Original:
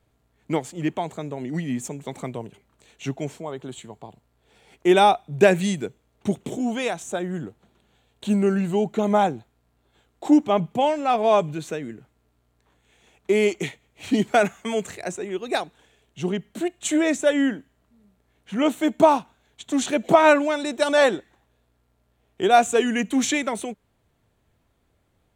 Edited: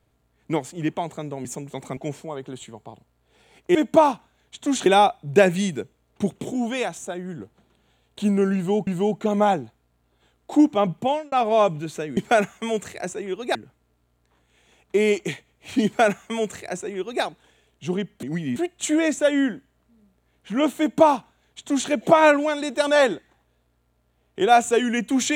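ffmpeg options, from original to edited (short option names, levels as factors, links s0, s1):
-filter_complex "[0:a]asplit=13[s0][s1][s2][s3][s4][s5][s6][s7][s8][s9][s10][s11][s12];[s0]atrim=end=1.452[s13];[s1]atrim=start=1.778:end=2.302[s14];[s2]atrim=start=3.128:end=4.912[s15];[s3]atrim=start=18.808:end=19.922[s16];[s4]atrim=start=4.908:end=7.102[s17];[s5]atrim=start=7.098:end=7.452,asetpts=PTS-STARTPTS,volume=0.631[s18];[s6]atrim=start=7.448:end=8.922[s19];[s7]atrim=start=8.598:end=11.05,asetpts=PTS-STARTPTS,afade=t=out:st=2.182:d=0.27[s20];[s8]atrim=start=11.05:end=11.902,asetpts=PTS-STARTPTS,afade=t=in:d=0.004:c=hsin[s21];[s9]atrim=start=14.198:end=15.582[s22];[s10]atrim=start=11.898:end=16.582[s23];[s11]atrim=start=1.448:end=1.782[s24];[s12]atrim=start=16.578[s25];[s13][s14]acrossfade=d=0.004:c1=hsin:c2=hsin[s26];[s26][s15]acrossfade=d=0.004:c1=hsin:c2=hsin[s27];[s27][s16]acrossfade=d=0.004:c1=hsin:c2=hsin[s28];[s28][s17]acrossfade=d=0.004:c1=hsin:c2=hsin[s29];[s29][s18]acrossfade=d=0.004:c1=hsin:c2=hsin[s30];[s30][s19]acrossfade=d=0.004:c1=hsin:c2=hsin[s31];[s20][s21]concat=n=2:v=0:a=1[s32];[s31][s32]acrossfade=d=0.004:c1=hsin:c2=hsin[s33];[s33][s22]acrossfade=d=0.004:c1=hsin:c2=hsin[s34];[s34][s23]acrossfade=d=0.004:c1=hsin:c2=hsin[s35];[s35][s24]acrossfade=d=0.004:c1=hsin:c2=hsin[s36];[s36][s25]acrossfade=d=0.004:c1=hsin:c2=hsin"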